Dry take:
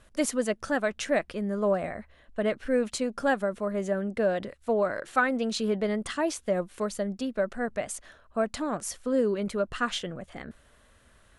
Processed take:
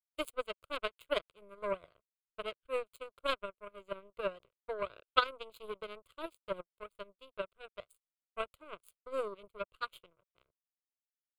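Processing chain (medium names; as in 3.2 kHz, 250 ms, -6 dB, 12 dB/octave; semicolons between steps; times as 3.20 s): power-law waveshaper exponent 3; static phaser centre 1.2 kHz, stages 8; trim +6.5 dB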